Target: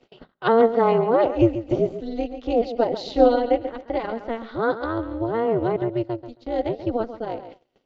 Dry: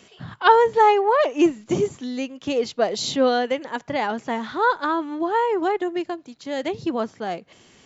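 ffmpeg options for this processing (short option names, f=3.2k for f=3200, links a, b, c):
-af "aecho=1:1:136|272|408:0.251|0.0653|0.017,acompressor=mode=upward:threshold=-28dB:ratio=2.5,highpass=f=230:w=0.5412,highpass=f=230:w=1.3066,equalizer=f=260:t=q:w=4:g=4,equalizer=f=370:t=q:w=4:g=4,equalizer=f=530:t=q:w=4:g=9,equalizer=f=980:t=q:w=4:g=-9,equalizer=f=2.3k:t=q:w=4:g=-7,equalizer=f=3.3k:t=q:w=4:g=-5,lowpass=f=4.2k:w=0.5412,lowpass=f=4.2k:w=1.3066,tremolo=f=230:d=0.889,bandreject=f=1.7k:w=8.2,agate=range=-29dB:threshold=-40dB:ratio=16:detection=peak"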